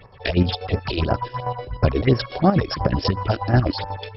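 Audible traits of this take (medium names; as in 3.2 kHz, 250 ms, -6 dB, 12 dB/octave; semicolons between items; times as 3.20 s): chopped level 8.2 Hz, depth 60%, duty 50%; phasing stages 4, 2.9 Hz, lowest notch 140–3800 Hz; MP2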